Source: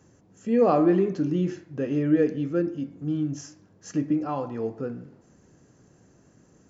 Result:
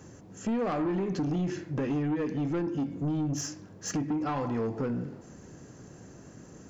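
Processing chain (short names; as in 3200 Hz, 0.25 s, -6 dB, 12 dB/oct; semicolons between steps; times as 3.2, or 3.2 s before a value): dynamic EQ 530 Hz, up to -7 dB, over -34 dBFS, Q 0.79; compressor 10:1, threshold -30 dBFS, peak gain reduction 11.5 dB; soft clip -33.5 dBFS, distortion -12 dB; gain +8.5 dB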